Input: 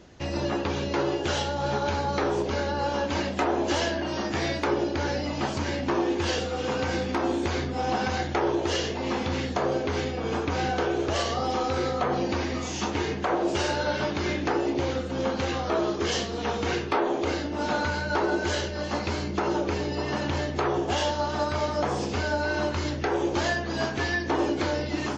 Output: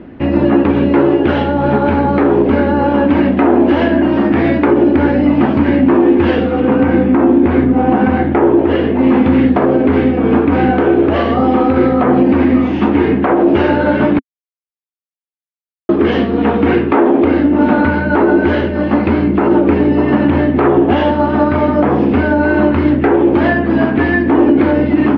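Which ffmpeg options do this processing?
ffmpeg -i in.wav -filter_complex "[0:a]asettb=1/sr,asplit=3[link_01][link_02][link_03];[link_01]atrim=end=6.604[link_04];[link_02]atrim=start=6.6:end=8.99,asetpts=PTS-STARTPTS,afade=type=in:duration=0.004:curve=qsin,afade=type=out:start_time=2.386:duration=0.004:curve=qsin,lowpass=frequency=2300:poles=1[link_05];[link_03]atrim=start=8.986[link_06];[link_04][link_05]acrossfade=duration=0.004:curve1=hsin:curve2=qsin[link_07];[link_07][link_06]acrossfade=duration=0.004:curve1=qsin:curve2=hsin,asplit=3[link_08][link_09][link_10];[link_08]atrim=end=14.19,asetpts=PTS-STARTPTS,afade=type=out:start_time=14.186:duration=0.004:curve=hsin[link_11];[link_09]atrim=start=14.19:end=15.89,asetpts=PTS-STARTPTS,volume=0[link_12];[link_10]atrim=start=15.89,asetpts=PTS-STARTPTS,afade=type=in:duration=0.004:curve=hsin[link_13];[link_11][link_12][link_13]concat=n=3:v=0:a=1,lowpass=frequency=2500:width=0.5412,lowpass=frequency=2500:width=1.3066,equalizer=frequency=260:width=1.7:gain=13.5,alimiter=level_in=12.5dB:limit=-1dB:release=50:level=0:latency=1,volume=-1dB" out.wav

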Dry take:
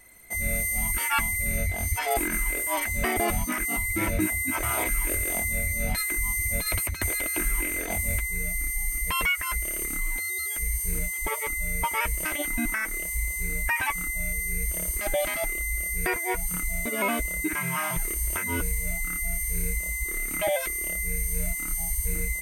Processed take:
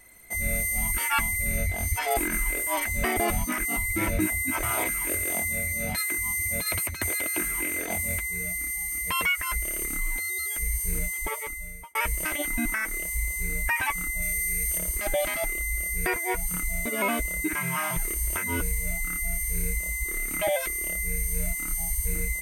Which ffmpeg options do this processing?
ffmpeg -i in.wav -filter_complex "[0:a]asettb=1/sr,asplit=3[link_01][link_02][link_03];[link_01]atrim=end=4.664[link_04];[link_02]atrim=start=4.66:end=9.29,asetpts=PTS-STARTPTS,afade=type=in:duration=0.004:curve=qsin,afade=type=out:start_time=4.626:duration=0.004:curve=qsin,highpass=89[link_05];[link_03]atrim=start=9.286[link_06];[link_04][link_05]acrossfade=duration=0.004:curve1=hsin:curve2=qsin[link_07];[link_07][link_06]acrossfade=duration=0.004:curve1=qsin:curve2=hsin,asettb=1/sr,asplit=3[link_08][link_09][link_10];[link_08]atrim=end=14.224[link_11];[link_09]atrim=start=14.22:end=14.78,asetpts=PTS-STARTPTS,afade=type=in:duration=0.004:curve=qsin,afade=type=out:start_time=0.556:duration=0.004:curve=qsin,tiltshelf=frequency=1500:gain=-4[link_12];[link_10]atrim=start=14.776[link_13];[link_11][link_12]acrossfade=duration=0.004:curve1=hsin:curve2=qsin[link_14];[link_14][link_13]acrossfade=duration=0.004:curve1=qsin:curve2=hsin,asplit=2[link_15][link_16];[link_15]atrim=end=11.95,asetpts=PTS-STARTPTS,afade=type=out:start_time=11.13:duration=0.82[link_17];[link_16]atrim=start=11.95,asetpts=PTS-STARTPTS,afade=type=in:duration=0.004:curve=hsin[link_18];[link_17][link_18]concat=n=2:v=0:a=1" out.wav

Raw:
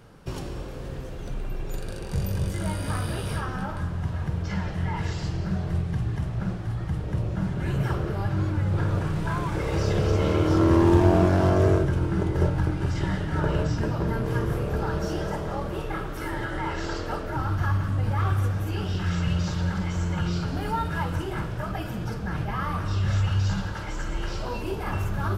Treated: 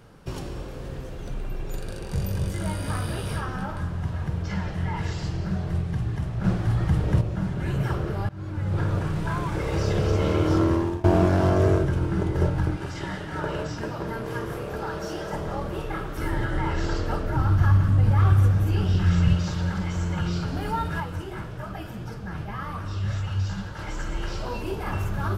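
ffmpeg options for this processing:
ffmpeg -i in.wav -filter_complex "[0:a]asettb=1/sr,asplit=3[link_01][link_02][link_03];[link_01]atrim=end=12.764[link_04];[link_02]atrim=start=12.76:end=15.33,asetpts=PTS-STARTPTS,afade=type=in:duration=0.004:curve=qsin,afade=type=out:start_time=2.566:duration=0.004:curve=qsin,lowshelf=frequency=200:gain=-11.5[link_05];[link_03]atrim=start=15.326[link_06];[link_04][link_05]acrossfade=duration=0.004:curve1=hsin:curve2=qsin[link_07];[link_07][link_06]acrossfade=duration=0.004:curve1=qsin:curve2=hsin,asettb=1/sr,asplit=3[link_08][link_09][link_10];[link_08]atrim=end=16.184[link_11];[link_09]atrim=start=16.18:end=19.35,asetpts=PTS-STARTPTS,afade=type=in:duration=0.004:curve=qsin,afade=type=out:start_time=3.166:duration=0.004:curve=qsin,lowshelf=frequency=220:gain=8[link_12];[link_10]atrim=start=19.346[link_13];[link_11][link_12]acrossfade=duration=0.004:curve1=hsin:curve2=qsin[link_14];[link_14][link_13]acrossfade=duration=0.004:curve1=qsin:curve2=hsin,asettb=1/sr,asplit=3[link_15][link_16][link_17];[link_15]atrim=end=21.004[link_18];[link_16]atrim=start=21:end=23.79,asetpts=PTS-STARTPTS,afade=type=in:duration=0.004:curve=qsin,afade=type=out:start_time=2.786:duration=0.004:curve=qsin,flanger=delay=6.1:depth=6.6:regen=68:speed=1.8:shape=triangular[link_19];[link_17]atrim=start=23.786[link_20];[link_18][link_19]acrossfade=duration=0.004:curve1=hsin:curve2=qsin[link_21];[link_21][link_20]acrossfade=duration=0.004:curve1=qsin:curve2=hsin,asplit=5[link_22][link_23][link_24][link_25][link_26];[link_22]atrim=end=6.442[link_27];[link_23]atrim=start=6.438:end=7.212,asetpts=PTS-STARTPTS,volume=6.5dB[link_28];[link_24]atrim=start=7.208:end=8.29,asetpts=PTS-STARTPTS,afade=type=out:start_time=1.078:duration=0.004:curve=hsin:silence=0.1[link_29];[link_25]atrim=start=8.29:end=11.04,asetpts=PTS-STARTPTS,afade=type=in:duration=0.49:silence=0.1,afade=type=out:start_time=2.27:duration=0.48:silence=0.0749894[link_30];[link_26]atrim=start=11.04,asetpts=PTS-STARTPTS,afade=type=in:duration=0.004:curve=hsin:silence=0.0749894[link_31];[link_27][link_28]acrossfade=duration=0.004:curve1=hsin:curve2=hsin[link_32];[link_29][link_30][link_31]concat=n=3:v=0:a=1[link_33];[link_32][link_33]acrossfade=duration=0.004:curve1=hsin:curve2=hsin" out.wav

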